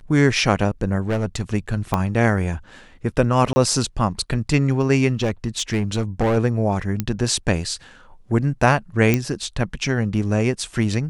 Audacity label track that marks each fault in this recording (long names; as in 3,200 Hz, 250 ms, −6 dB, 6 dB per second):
1.080000	1.420000	clipping −17 dBFS
1.940000	1.940000	click −7 dBFS
3.530000	3.560000	drop-out 30 ms
5.220000	6.380000	clipping −15.5 dBFS
7.000000	7.000000	click −8 dBFS
9.140000	9.140000	click −5 dBFS